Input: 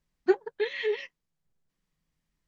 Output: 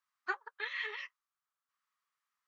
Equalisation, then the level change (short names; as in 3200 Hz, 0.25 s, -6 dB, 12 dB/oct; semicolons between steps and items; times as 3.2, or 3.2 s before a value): resonant high-pass 1200 Hz, resonance Q 5.4; -6.0 dB